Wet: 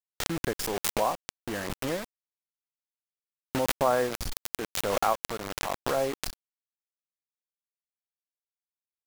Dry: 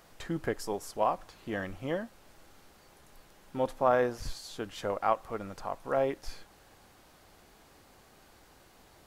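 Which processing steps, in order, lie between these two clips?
high-shelf EQ 5,900 Hz −2.5 dB
bit-depth reduction 6 bits, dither none
background raised ahead of every attack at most 21 dB per second

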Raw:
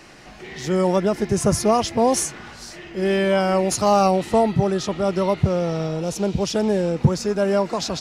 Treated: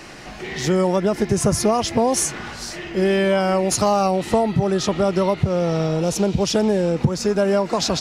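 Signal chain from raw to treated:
downward compressor 4 to 1, threshold −22 dBFS, peak gain reduction 11 dB
level +6.5 dB

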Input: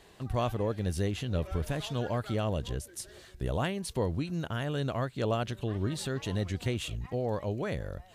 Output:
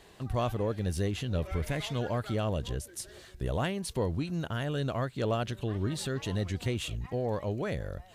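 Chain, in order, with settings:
0:01.49–0:01.99: parametric band 2,100 Hz +14 dB 0.21 octaves
in parallel at −9 dB: soft clipping −31 dBFS, distortion −9 dB
on the sum: level −1.5 dB

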